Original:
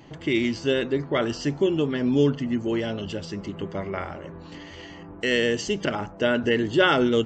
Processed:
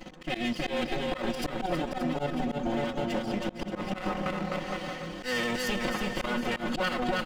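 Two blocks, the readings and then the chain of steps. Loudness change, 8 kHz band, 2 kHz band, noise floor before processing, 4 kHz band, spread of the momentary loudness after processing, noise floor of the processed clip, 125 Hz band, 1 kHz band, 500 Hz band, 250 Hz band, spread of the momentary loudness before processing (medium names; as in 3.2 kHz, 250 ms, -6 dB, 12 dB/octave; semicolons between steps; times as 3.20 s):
-7.0 dB, no reading, -5.0 dB, -42 dBFS, -5.5 dB, 5 LU, -44 dBFS, -7.0 dB, -1.0 dB, -8.5 dB, -6.5 dB, 19 LU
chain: comb filter that takes the minimum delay 3.9 ms; comb 5.5 ms, depth 78%; transient shaper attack +2 dB, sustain -6 dB; dynamic bell 6 kHz, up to -6 dB, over -57 dBFS, Q 5.9; level held to a coarse grid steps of 10 dB; on a send: bouncing-ball echo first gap 320 ms, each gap 0.8×, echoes 5; on the sum: slow attack 159 ms; compression 6:1, threshold -35 dBFS, peak gain reduction 13.5 dB; trim +8 dB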